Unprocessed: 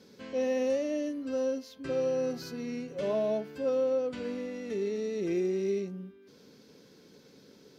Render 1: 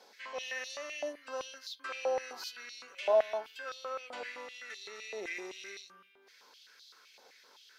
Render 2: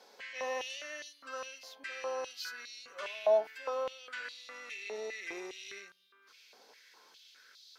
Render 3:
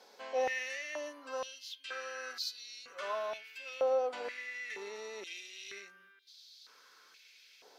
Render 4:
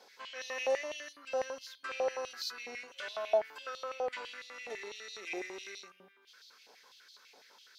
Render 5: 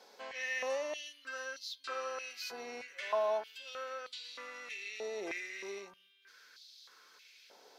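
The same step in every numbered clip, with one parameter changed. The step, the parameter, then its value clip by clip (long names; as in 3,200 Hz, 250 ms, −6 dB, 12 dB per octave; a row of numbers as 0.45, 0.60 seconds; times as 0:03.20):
high-pass on a step sequencer, speed: 7.8, 4.9, 2.1, 12, 3.2 Hertz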